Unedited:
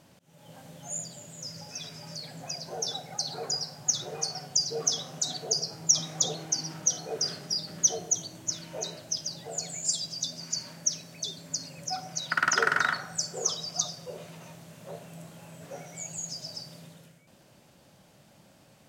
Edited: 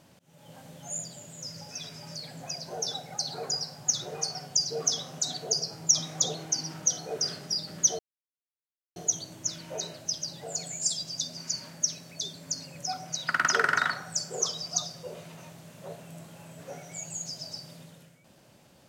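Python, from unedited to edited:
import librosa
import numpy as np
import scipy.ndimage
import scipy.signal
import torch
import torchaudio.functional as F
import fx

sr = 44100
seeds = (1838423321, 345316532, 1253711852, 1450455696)

y = fx.edit(x, sr, fx.insert_silence(at_s=7.99, length_s=0.97), tone=tone)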